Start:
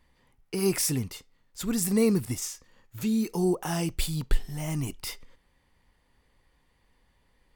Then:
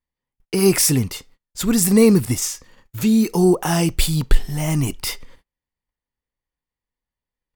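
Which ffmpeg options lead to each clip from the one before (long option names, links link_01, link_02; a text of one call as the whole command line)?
ffmpeg -i in.wav -af "acontrast=83,agate=range=-33dB:threshold=-50dB:ratio=16:detection=peak,volume=3.5dB" out.wav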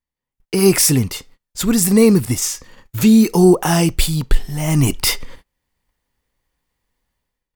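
ffmpeg -i in.wav -af "dynaudnorm=framelen=110:gausssize=7:maxgain=16dB,volume=-1dB" out.wav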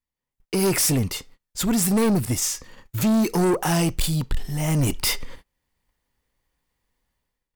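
ffmpeg -i in.wav -af "asoftclip=type=tanh:threshold=-14.5dB,volume=-2dB" out.wav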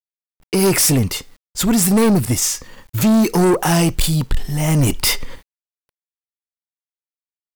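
ffmpeg -i in.wav -af "acrusher=bits=9:mix=0:aa=0.000001,volume=6dB" out.wav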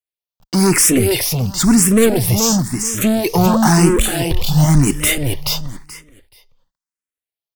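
ffmpeg -i in.wav -filter_complex "[0:a]asplit=2[link_01][link_02];[link_02]aecho=0:1:429|858|1287:0.562|0.107|0.0203[link_03];[link_01][link_03]amix=inputs=2:normalize=0,asplit=2[link_04][link_05];[link_05]afreqshift=0.97[link_06];[link_04][link_06]amix=inputs=2:normalize=1,volume=4.5dB" out.wav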